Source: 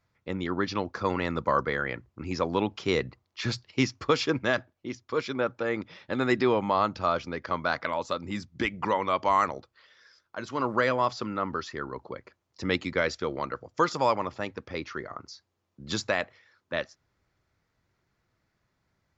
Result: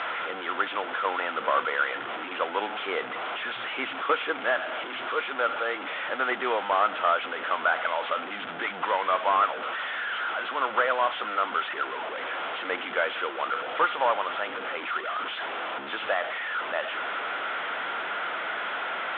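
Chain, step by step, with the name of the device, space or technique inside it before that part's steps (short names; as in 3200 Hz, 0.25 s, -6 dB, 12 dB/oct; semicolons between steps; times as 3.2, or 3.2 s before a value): digital answering machine (BPF 370–3200 Hz; delta modulation 16 kbps, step -28.5 dBFS; speaker cabinet 360–4500 Hz, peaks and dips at 360 Hz -4 dB, 730 Hz +4 dB, 1400 Hz +9 dB, 3400 Hz +9 dB)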